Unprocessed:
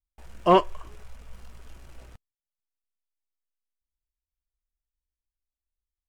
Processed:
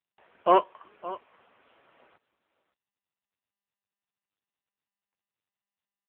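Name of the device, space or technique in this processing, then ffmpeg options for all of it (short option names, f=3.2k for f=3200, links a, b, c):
satellite phone: -af "highpass=400,lowpass=3.2k,aecho=1:1:565:0.15" -ar 8000 -c:a libopencore_amrnb -b:a 6700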